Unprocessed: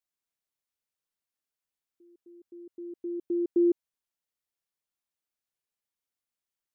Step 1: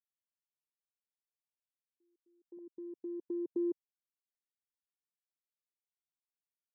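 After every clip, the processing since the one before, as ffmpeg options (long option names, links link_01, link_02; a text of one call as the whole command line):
ffmpeg -i in.wav -af "highpass=frequency=110:width=0.5412,highpass=frequency=110:width=1.3066,afwtdn=0.0126,acompressor=threshold=-42dB:ratio=1.5,volume=-3dB" out.wav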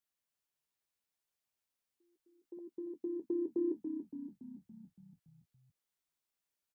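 ffmpeg -i in.wav -filter_complex "[0:a]alimiter=level_in=7.5dB:limit=-24dB:level=0:latency=1,volume=-7.5dB,asplit=2[link_01][link_02];[link_02]adelay=13,volume=-10.5dB[link_03];[link_01][link_03]amix=inputs=2:normalize=0,asplit=8[link_04][link_05][link_06][link_07][link_08][link_09][link_10][link_11];[link_05]adelay=283,afreqshift=-31,volume=-7dB[link_12];[link_06]adelay=566,afreqshift=-62,volume=-11.7dB[link_13];[link_07]adelay=849,afreqshift=-93,volume=-16.5dB[link_14];[link_08]adelay=1132,afreqshift=-124,volume=-21.2dB[link_15];[link_09]adelay=1415,afreqshift=-155,volume=-25.9dB[link_16];[link_10]adelay=1698,afreqshift=-186,volume=-30.7dB[link_17];[link_11]adelay=1981,afreqshift=-217,volume=-35.4dB[link_18];[link_04][link_12][link_13][link_14][link_15][link_16][link_17][link_18]amix=inputs=8:normalize=0,volume=4.5dB" out.wav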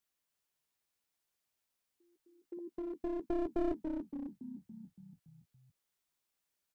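ffmpeg -i in.wav -af "aeval=exprs='clip(val(0),-1,0.00794)':channel_layout=same,volume=3.5dB" out.wav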